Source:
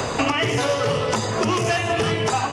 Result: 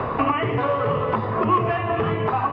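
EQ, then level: LPF 2900 Hz 12 dB/oct; air absorption 480 m; bell 1100 Hz +10 dB 0.26 oct; 0.0 dB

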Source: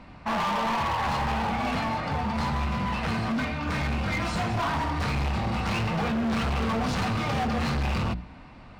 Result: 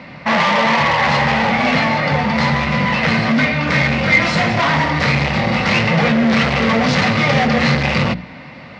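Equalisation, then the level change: speaker cabinet 110–5700 Hz, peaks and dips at 150 Hz +9 dB, 240 Hz +4 dB, 540 Hz +10 dB, 2000 Hz +10 dB; high shelf 2500 Hz +9 dB; +8.0 dB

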